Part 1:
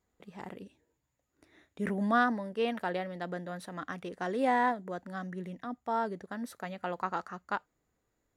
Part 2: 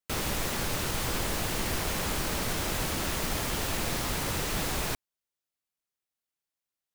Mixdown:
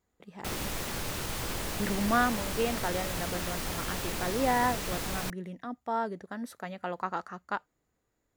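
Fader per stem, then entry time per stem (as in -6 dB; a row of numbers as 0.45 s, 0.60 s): +0.5 dB, -4.0 dB; 0.00 s, 0.35 s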